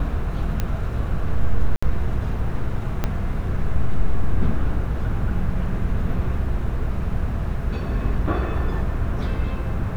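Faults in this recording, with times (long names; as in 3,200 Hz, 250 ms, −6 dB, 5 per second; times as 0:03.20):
0:00.60: click −10 dBFS
0:01.76–0:01.82: drop-out 65 ms
0:03.04: click −9 dBFS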